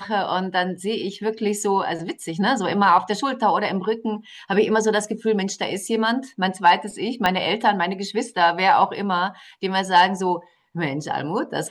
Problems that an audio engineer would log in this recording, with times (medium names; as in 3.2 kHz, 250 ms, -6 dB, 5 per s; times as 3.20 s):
7.26 s: pop -6 dBFS